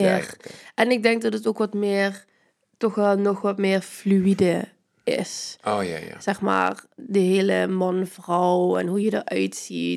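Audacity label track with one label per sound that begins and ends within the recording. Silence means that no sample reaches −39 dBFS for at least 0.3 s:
2.810000	4.660000	sound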